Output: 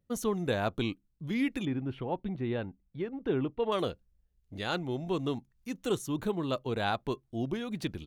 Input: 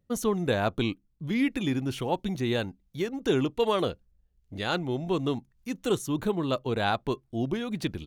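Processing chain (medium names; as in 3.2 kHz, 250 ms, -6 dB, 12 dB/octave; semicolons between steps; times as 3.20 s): 1.65–3.72 s: distance through air 480 m; trim -4 dB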